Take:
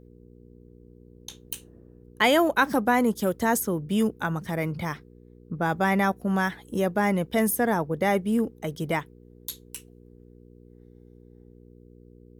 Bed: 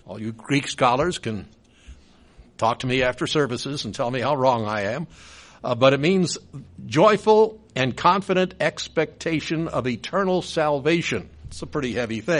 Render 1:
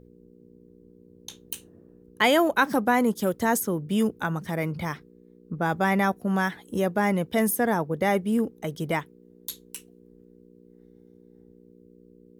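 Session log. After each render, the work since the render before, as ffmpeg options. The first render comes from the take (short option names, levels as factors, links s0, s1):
-af "bandreject=f=60:t=h:w=4,bandreject=f=120:t=h:w=4"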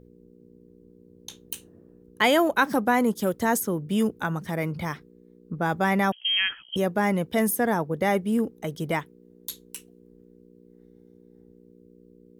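-filter_complex "[0:a]asettb=1/sr,asplit=3[s0][s1][s2];[s0]atrim=end=6.124[s3];[s1]atrim=start=6.12:end=6.76,asetpts=PTS-STARTPTS,afade=t=in:d=0.004:c=qsin,afade=t=out:st=0.636:d=0.004:c=qsin,lowpass=f=2900:t=q:w=0.5098,lowpass=f=2900:t=q:w=0.6013,lowpass=f=2900:t=q:w=0.9,lowpass=f=2900:t=q:w=2.563,afreqshift=-3400[s4];[s2]atrim=start=6.756[s5];[s3][s4]acrossfade=d=0.004:c1=hsin:c2=qsin[s6];[s6][s5]acrossfade=d=0.004:c1=qsin:c2=hsin"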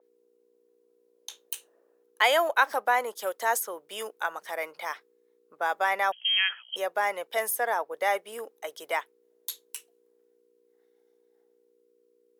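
-af "highpass=f=560:w=0.5412,highpass=f=560:w=1.3066,adynamicequalizer=threshold=0.00794:dfrequency=4300:dqfactor=0.7:tfrequency=4300:tqfactor=0.7:attack=5:release=100:ratio=0.375:range=3:mode=cutabove:tftype=highshelf"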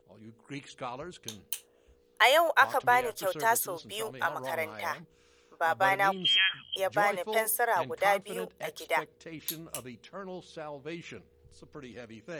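-filter_complex "[1:a]volume=0.1[s0];[0:a][s0]amix=inputs=2:normalize=0"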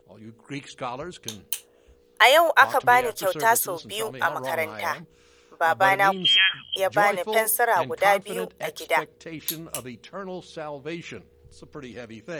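-af "volume=2.11"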